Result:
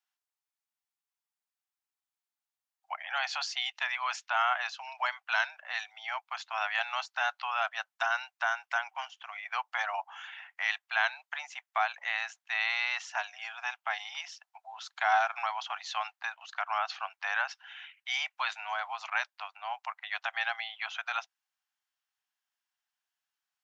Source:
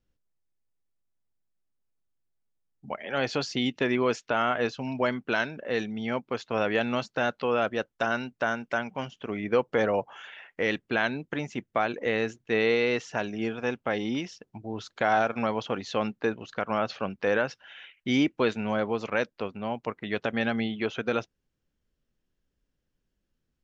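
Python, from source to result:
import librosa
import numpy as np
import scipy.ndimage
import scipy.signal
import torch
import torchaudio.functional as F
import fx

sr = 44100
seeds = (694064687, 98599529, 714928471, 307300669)

y = scipy.signal.sosfilt(scipy.signal.butter(12, 720.0, 'highpass', fs=sr, output='sos'), x)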